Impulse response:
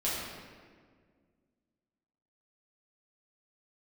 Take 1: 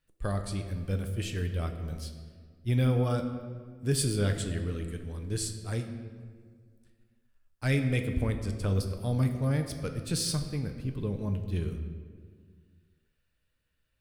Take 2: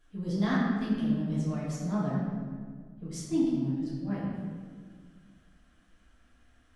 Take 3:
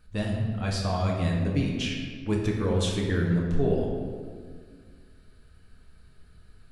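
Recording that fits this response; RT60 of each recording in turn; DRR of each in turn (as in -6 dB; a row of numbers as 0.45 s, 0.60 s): 2; 1.8 s, 1.8 s, 1.8 s; 5.5 dB, -9.0 dB, -1.5 dB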